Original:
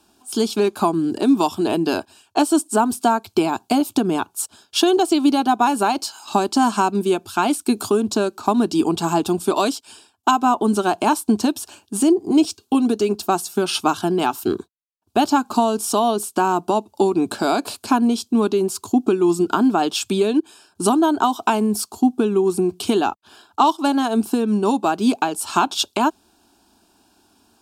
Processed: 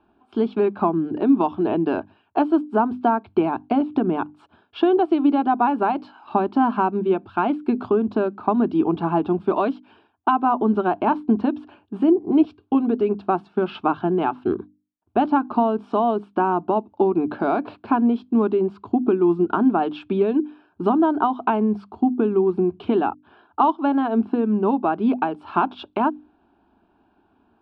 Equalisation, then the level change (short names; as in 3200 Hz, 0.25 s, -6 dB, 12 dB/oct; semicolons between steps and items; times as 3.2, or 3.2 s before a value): LPF 2700 Hz 12 dB/oct; air absorption 470 m; notches 50/100/150/200/250/300 Hz; 0.0 dB